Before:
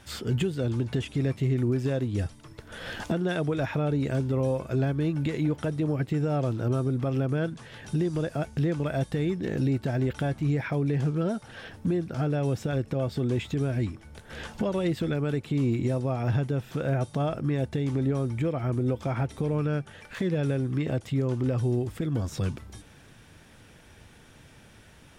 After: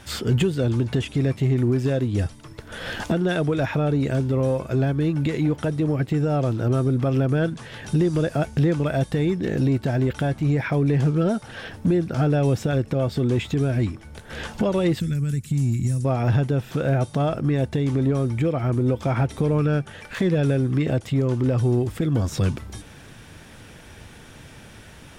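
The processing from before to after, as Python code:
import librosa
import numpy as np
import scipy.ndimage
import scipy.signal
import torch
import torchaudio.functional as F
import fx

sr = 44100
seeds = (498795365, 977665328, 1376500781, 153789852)

p1 = fx.curve_eq(x, sr, hz=(180.0, 320.0, 760.0, 1800.0, 3500.0, 7200.0), db=(0, -14, -24, -9, -10, 8), at=(15.0, 16.05))
p2 = np.clip(p1, -10.0 ** (-23.5 / 20.0), 10.0 ** (-23.5 / 20.0))
p3 = p1 + (p2 * librosa.db_to_amplitude(-8.0))
p4 = fx.rider(p3, sr, range_db=10, speed_s=2.0)
y = p4 * librosa.db_to_amplitude(3.0)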